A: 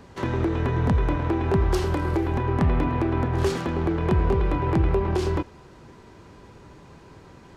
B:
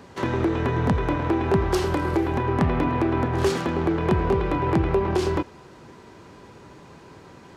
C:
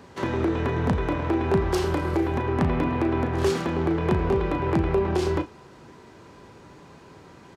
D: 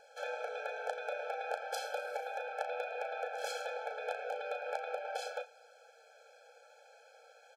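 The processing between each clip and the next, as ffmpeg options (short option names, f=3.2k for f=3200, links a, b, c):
-af "highpass=f=140:p=1,volume=3dB"
-filter_complex "[0:a]asplit=2[a][b];[b]adelay=36,volume=-10.5dB[c];[a][c]amix=inputs=2:normalize=0,volume=-2dB"
-af "afftfilt=real='re*eq(mod(floor(b*sr/1024/440),2),1)':imag='im*eq(mod(floor(b*sr/1024/440),2),1)':win_size=1024:overlap=0.75,volume=-5dB"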